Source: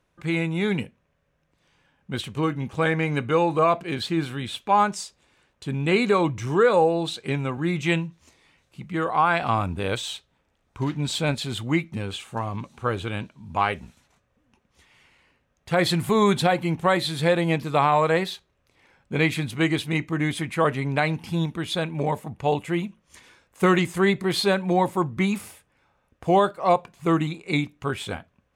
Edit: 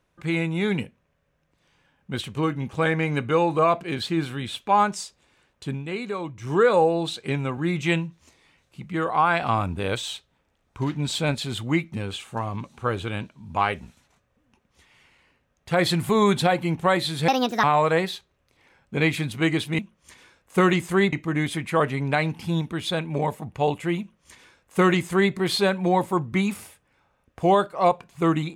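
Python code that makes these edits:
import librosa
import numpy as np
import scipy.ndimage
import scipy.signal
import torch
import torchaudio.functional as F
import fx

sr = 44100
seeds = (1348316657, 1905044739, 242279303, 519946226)

y = fx.edit(x, sr, fx.fade_down_up(start_s=5.69, length_s=0.85, db=-10.0, fade_s=0.15),
    fx.speed_span(start_s=17.28, length_s=0.54, speed=1.52),
    fx.duplicate(start_s=22.84, length_s=1.34, to_s=19.97), tone=tone)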